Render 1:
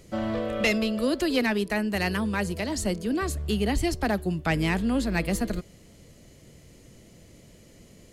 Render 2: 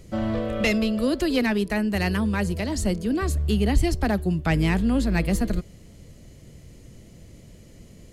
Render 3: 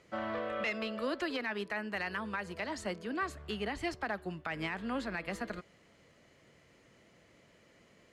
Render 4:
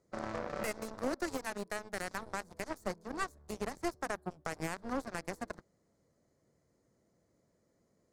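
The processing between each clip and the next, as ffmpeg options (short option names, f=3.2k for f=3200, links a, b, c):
-af "lowshelf=f=180:g=9"
-af "bandpass=f=1.4k:t=q:w=1.1:csg=0,alimiter=level_in=1dB:limit=-24dB:level=0:latency=1:release=114,volume=-1dB"
-filter_complex "[0:a]aeval=exprs='0.0596*(cos(1*acos(clip(val(0)/0.0596,-1,1)))-cos(1*PI/2))+0.00422*(cos(3*acos(clip(val(0)/0.0596,-1,1)))-cos(3*PI/2))+0.015*(cos(4*acos(clip(val(0)/0.0596,-1,1)))-cos(4*PI/2))+0.00841*(cos(6*acos(clip(val(0)/0.0596,-1,1)))-cos(6*PI/2))+0.00944*(cos(7*acos(clip(val(0)/0.0596,-1,1)))-cos(7*PI/2))':c=same,acrossover=split=4600[a][b];[a]adynamicsmooth=sensitivity=1.5:basefreq=1.1k[c];[c][b]amix=inputs=2:normalize=0,volume=1.5dB"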